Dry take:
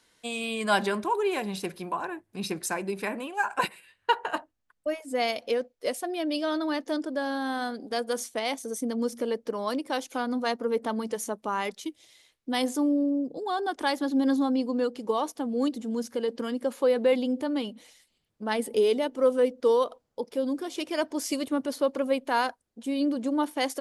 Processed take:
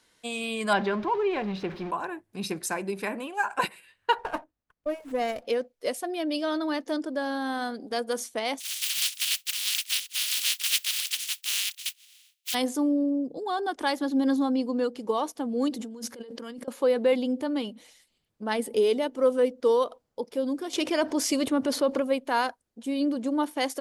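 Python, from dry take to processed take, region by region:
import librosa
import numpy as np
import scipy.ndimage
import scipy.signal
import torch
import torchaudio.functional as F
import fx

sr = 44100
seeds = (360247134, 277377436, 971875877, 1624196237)

y = fx.chain(x, sr, fx.zero_step(step_db=-35.0),
    fx.air_absorb(metres=250.0), at=(0.73, 1.91))
y = fx.chain(y, sr, fx.peak_eq(hz=3600.0, db=-10.5, octaves=1.5),
    fx.running_max(window=5), at=(4.18, 5.45))
y = fx.spec_flatten(y, sr, power=0.13, at=(8.59, 12.53), fade=0.02)
y = fx.highpass_res(y, sr, hz=2900.0, q=2.3, at=(8.59, 12.53), fade=0.02)
y = fx.chain(y, sr, fx.low_shelf(hz=130.0, db=-7.0),
    fx.over_compress(threshold_db=-39.0, ratio=-1.0), at=(15.7, 16.68))
y = fx.chain(y, sr, fx.high_shelf(hz=9600.0, db=-8.5),
    fx.env_flatten(amount_pct=50), at=(20.73, 22.0))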